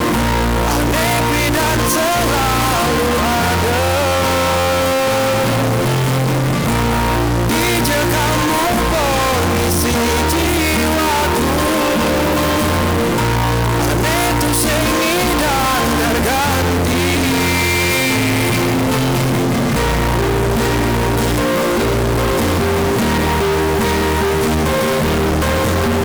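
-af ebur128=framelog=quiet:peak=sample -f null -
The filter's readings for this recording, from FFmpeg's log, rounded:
Integrated loudness:
  I:         -15.0 LUFS
  Threshold: -25.0 LUFS
Loudness range:
  LRA:         1.0 LU
  Threshold: -35.0 LUFS
  LRA low:   -15.6 LUFS
  LRA high:  -14.6 LUFS
Sample peak:
  Peak:       -9.6 dBFS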